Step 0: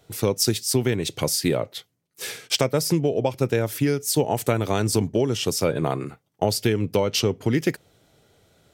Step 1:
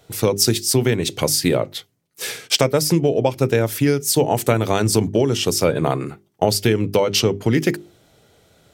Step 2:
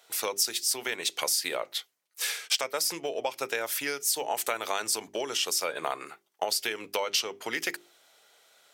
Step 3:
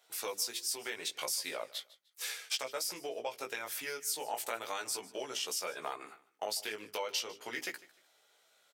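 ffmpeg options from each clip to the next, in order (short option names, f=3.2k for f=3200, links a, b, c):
-af "bandreject=f=50:t=h:w=6,bandreject=f=100:t=h:w=6,bandreject=f=150:t=h:w=6,bandreject=f=200:t=h:w=6,bandreject=f=250:t=h:w=6,bandreject=f=300:t=h:w=6,bandreject=f=350:t=h:w=6,bandreject=f=400:t=h:w=6,volume=5dB"
-af "highpass=910,acompressor=threshold=-25dB:ratio=2.5,volume=-1.5dB"
-af "flanger=delay=15.5:depth=3.5:speed=0.38,bandreject=f=60:t=h:w=6,bandreject=f=120:t=h:w=6,aecho=1:1:151|302:0.1|0.027,volume=-5dB"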